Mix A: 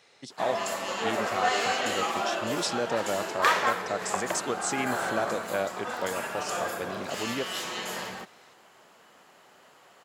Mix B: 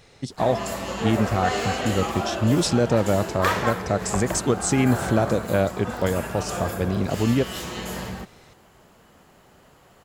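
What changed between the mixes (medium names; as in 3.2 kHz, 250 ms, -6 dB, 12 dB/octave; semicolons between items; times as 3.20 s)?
speech +5.0 dB; master: remove frequency weighting A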